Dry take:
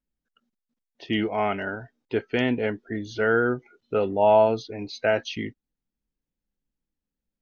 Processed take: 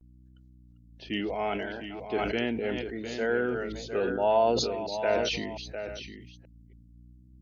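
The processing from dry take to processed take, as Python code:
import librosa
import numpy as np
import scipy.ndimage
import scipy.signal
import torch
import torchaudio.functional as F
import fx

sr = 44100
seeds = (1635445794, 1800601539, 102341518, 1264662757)

y = fx.reverse_delay(x, sr, ms=287, wet_db=-13.0)
y = fx.highpass(y, sr, hz=500.0, slope=6)
y = fx.peak_eq(y, sr, hz=1400.0, db=-9.0, octaves=2.0)
y = fx.add_hum(y, sr, base_hz=60, snr_db=22)
y = fx.vibrato(y, sr, rate_hz=0.71, depth_cents=84.0)
y = y + 10.0 ** (-9.0 / 20.0) * np.pad(y, (int(705 * sr / 1000.0), 0))[:len(y)]
y = fx.sustainer(y, sr, db_per_s=33.0)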